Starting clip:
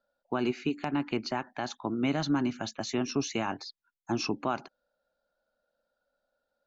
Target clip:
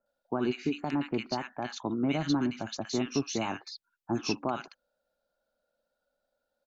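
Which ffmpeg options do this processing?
ffmpeg -i in.wav -filter_complex "[0:a]acrossover=split=1400[link_01][link_02];[link_02]adelay=60[link_03];[link_01][link_03]amix=inputs=2:normalize=0" out.wav

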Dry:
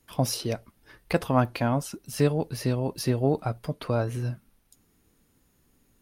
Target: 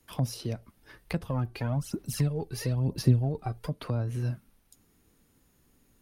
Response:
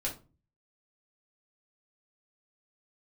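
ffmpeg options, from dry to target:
-filter_complex "[0:a]acrossover=split=220[link_01][link_02];[link_02]acompressor=threshold=-36dB:ratio=8[link_03];[link_01][link_03]amix=inputs=2:normalize=0,asplit=3[link_04][link_05][link_06];[link_04]afade=type=out:start_time=1.28:duration=0.02[link_07];[link_05]aphaser=in_gain=1:out_gain=1:delay=2.6:decay=0.63:speed=1:type=sinusoidal,afade=type=in:start_time=1.28:duration=0.02,afade=type=out:start_time=3.67:duration=0.02[link_08];[link_06]afade=type=in:start_time=3.67:duration=0.02[link_09];[link_07][link_08][link_09]amix=inputs=3:normalize=0"

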